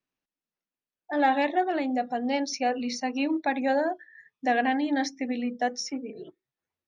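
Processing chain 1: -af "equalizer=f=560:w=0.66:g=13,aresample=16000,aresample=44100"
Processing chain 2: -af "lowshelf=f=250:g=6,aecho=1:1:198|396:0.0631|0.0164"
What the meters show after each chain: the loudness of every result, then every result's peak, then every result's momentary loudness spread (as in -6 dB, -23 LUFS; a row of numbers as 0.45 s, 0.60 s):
-18.0 LUFS, -26.0 LUFS; -2.5 dBFS, -12.5 dBFS; 13 LU, 8 LU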